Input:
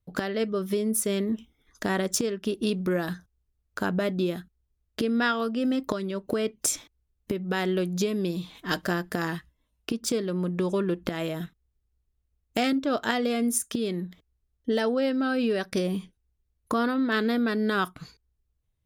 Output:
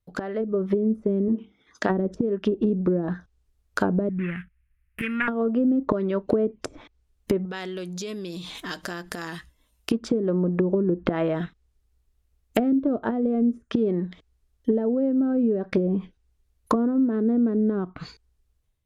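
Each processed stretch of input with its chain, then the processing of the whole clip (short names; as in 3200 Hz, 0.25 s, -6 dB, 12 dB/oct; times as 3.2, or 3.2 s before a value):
1.28–1.9 HPF 120 Hz + air absorption 87 m + notches 50/100/150/200/250/300/350/400/450 Hz
4.09–5.28 median filter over 25 samples + EQ curve 170 Hz 0 dB, 270 Hz -13 dB, 660 Hz -20 dB, 1800 Hz +12 dB, 2600 Hz +10 dB, 4300 Hz -20 dB, 6900 Hz -15 dB, 10000 Hz +9 dB
7.45–9.91 high shelf 4400 Hz +7.5 dB + compressor 5:1, threshold -38 dBFS
whole clip: treble ducked by the level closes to 340 Hz, closed at -22.5 dBFS; bell 130 Hz -4.5 dB 2.2 oct; AGC gain up to 8.5 dB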